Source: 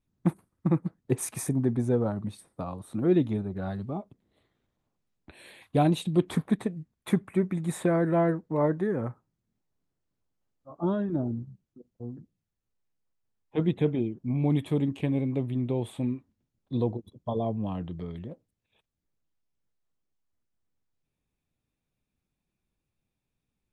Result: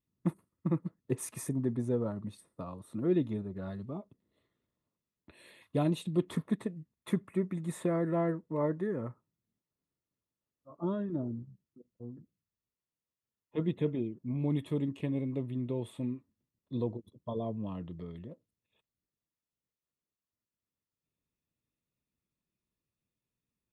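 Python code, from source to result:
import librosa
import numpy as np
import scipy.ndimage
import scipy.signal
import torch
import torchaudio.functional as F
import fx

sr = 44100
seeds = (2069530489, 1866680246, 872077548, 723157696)

y = fx.notch_comb(x, sr, f0_hz=780.0)
y = y * 10.0 ** (-5.5 / 20.0)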